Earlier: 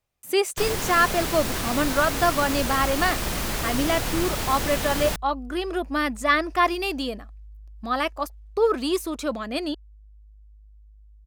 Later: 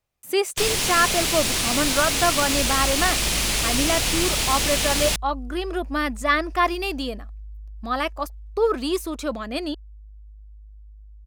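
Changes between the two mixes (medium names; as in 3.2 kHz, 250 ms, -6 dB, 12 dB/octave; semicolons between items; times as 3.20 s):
first sound: add high-order bell 4.9 kHz +9.5 dB 2.6 oct; second sound: add bass shelf 69 Hz +9 dB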